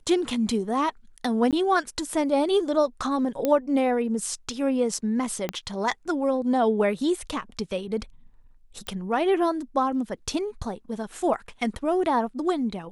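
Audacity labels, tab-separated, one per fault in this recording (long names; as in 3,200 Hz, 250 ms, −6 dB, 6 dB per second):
1.510000	1.530000	drop-out 17 ms
3.450000	3.450000	click −11 dBFS
5.490000	5.490000	click −13 dBFS
8.870000	8.870000	click −17 dBFS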